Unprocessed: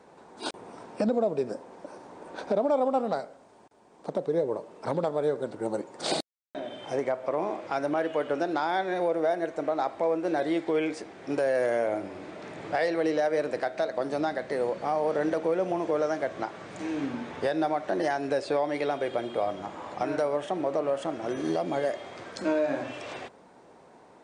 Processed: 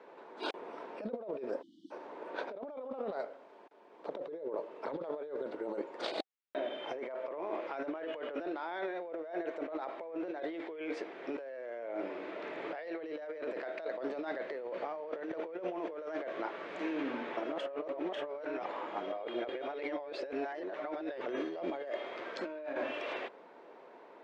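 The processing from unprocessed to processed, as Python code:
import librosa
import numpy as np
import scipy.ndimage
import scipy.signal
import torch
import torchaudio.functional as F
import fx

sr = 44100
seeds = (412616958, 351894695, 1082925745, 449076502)

y = fx.spec_erase(x, sr, start_s=1.62, length_s=0.29, low_hz=360.0, high_hz=2900.0)
y = fx.edit(y, sr, fx.reverse_span(start_s=17.37, length_s=3.89), tone=tone)
y = scipy.signal.sosfilt(scipy.signal.cheby1(2, 1.0, [380.0, 2900.0], 'bandpass', fs=sr, output='sos'), y)
y = fx.notch(y, sr, hz=770.0, q=12.0)
y = fx.over_compress(y, sr, threshold_db=-35.0, ratio=-1.0)
y = F.gain(torch.from_numpy(y), -4.0).numpy()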